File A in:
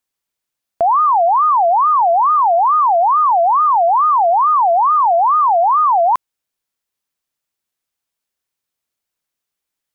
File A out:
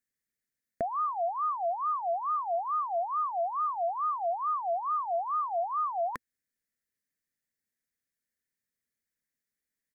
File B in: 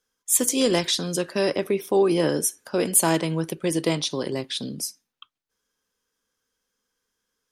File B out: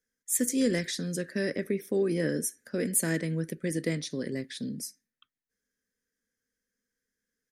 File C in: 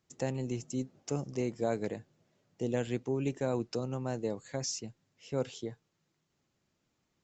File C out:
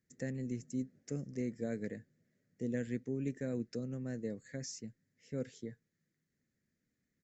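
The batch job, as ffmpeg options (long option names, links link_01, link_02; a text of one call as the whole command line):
ffmpeg -i in.wav -af "firequalizer=gain_entry='entry(130,0);entry(240,5);entry(340,-4);entry(480,-1);entry(890,-21);entry(1800,6);entry(2800,-12);entry(4300,-6);entry(6900,-3)':delay=0.05:min_phase=1,volume=-5dB" out.wav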